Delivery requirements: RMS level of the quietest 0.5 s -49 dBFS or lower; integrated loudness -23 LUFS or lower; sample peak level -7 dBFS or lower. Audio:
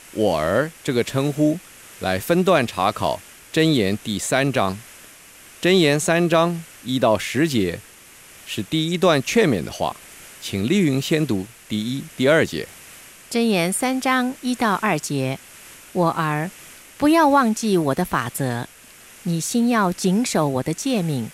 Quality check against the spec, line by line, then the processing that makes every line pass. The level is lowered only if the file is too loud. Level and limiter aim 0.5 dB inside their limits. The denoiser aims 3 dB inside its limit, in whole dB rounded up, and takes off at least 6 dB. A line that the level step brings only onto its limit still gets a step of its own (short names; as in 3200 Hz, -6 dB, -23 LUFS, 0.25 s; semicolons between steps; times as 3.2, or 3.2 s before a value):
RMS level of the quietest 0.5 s -46 dBFS: fail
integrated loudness -20.5 LUFS: fail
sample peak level -4.5 dBFS: fail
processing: denoiser 6 dB, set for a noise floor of -46 dBFS; gain -3 dB